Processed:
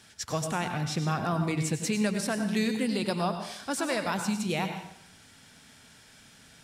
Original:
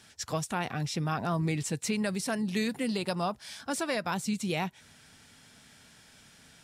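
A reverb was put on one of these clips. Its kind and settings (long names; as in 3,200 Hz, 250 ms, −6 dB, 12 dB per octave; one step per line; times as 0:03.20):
dense smooth reverb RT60 0.69 s, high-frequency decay 0.9×, pre-delay 80 ms, DRR 6.5 dB
level +1 dB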